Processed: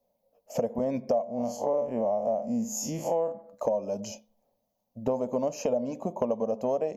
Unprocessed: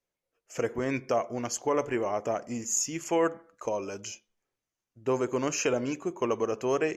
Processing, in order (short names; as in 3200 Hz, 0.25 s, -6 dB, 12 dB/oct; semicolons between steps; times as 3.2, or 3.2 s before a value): 1.24–3.32 time blur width 87 ms; EQ curve 150 Hz 0 dB, 220 Hz +13 dB, 350 Hz -9 dB, 580 Hz +15 dB, 920 Hz +5 dB, 1400 Hz -17 dB, 2800 Hz -11 dB, 4300 Hz -4 dB, 8500 Hz -11 dB, 13000 Hz +4 dB; compressor 4:1, threshold -35 dBFS, peak gain reduction 20.5 dB; gain +7.5 dB